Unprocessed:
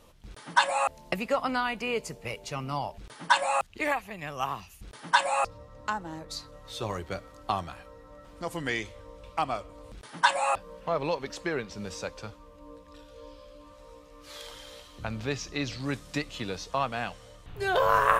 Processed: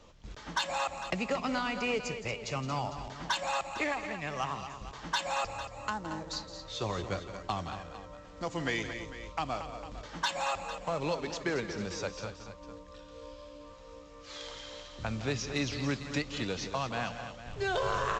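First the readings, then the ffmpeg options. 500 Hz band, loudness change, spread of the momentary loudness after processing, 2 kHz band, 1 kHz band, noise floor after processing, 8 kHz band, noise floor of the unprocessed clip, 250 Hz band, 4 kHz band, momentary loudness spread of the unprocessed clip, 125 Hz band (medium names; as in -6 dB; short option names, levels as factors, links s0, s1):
-3.5 dB, -4.5 dB, 16 LU, -5.5 dB, -7.0 dB, -50 dBFS, -2.0 dB, -52 dBFS, 0.0 dB, -1.5 dB, 22 LU, +0.5 dB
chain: -filter_complex "[0:a]acrossover=split=310|3000[s0][s1][s2];[s1]acompressor=threshold=0.0316:ratio=6[s3];[s0][s3][s2]amix=inputs=3:normalize=0,aresample=16000,acrusher=bits=5:mode=log:mix=0:aa=0.000001,aresample=44100,asoftclip=type=tanh:threshold=0.112,aecho=1:1:167|228|451:0.224|0.316|0.2"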